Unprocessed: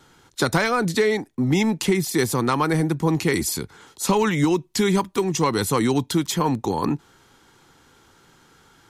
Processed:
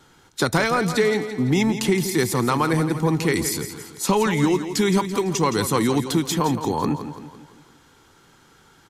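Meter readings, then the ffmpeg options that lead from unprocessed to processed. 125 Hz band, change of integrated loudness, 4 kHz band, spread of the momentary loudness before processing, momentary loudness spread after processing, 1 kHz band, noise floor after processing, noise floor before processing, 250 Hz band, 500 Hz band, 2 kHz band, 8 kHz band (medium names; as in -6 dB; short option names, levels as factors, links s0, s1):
+0.5 dB, +0.5 dB, +0.5 dB, 6 LU, 6 LU, +0.5 dB, -55 dBFS, -56 dBFS, +0.5 dB, +0.5 dB, +0.5 dB, +0.5 dB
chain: -af "aecho=1:1:168|336|504|672|840:0.299|0.146|0.0717|0.0351|0.0172"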